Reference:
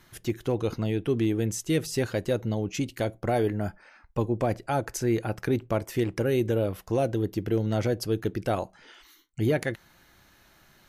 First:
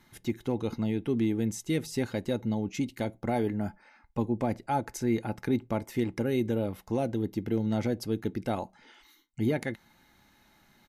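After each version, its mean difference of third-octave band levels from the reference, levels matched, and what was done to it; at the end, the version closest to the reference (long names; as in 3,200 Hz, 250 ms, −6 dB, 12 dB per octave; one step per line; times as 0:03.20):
2.5 dB: hollow resonant body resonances 230/850/2,100/3,800 Hz, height 9 dB, ringing for 35 ms
downsampling to 32,000 Hz
level −6 dB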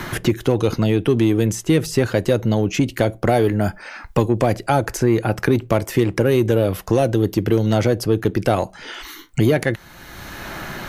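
4.0 dB: in parallel at −5 dB: soft clipping −26 dBFS, distortion −10 dB
on the sum: multiband upward and downward compressor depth 70%
level +6.5 dB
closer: first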